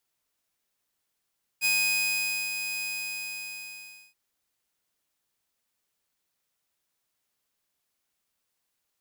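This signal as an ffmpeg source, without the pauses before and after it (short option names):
-f lavfi -i "aevalsrc='0.112*(2*mod(2500*t,1)-1)':d=2.53:s=44100,afade=t=in:d=0.04,afade=t=out:st=0.04:d=0.849:silence=0.376,afade=t=out:st=1.2:d=1.33"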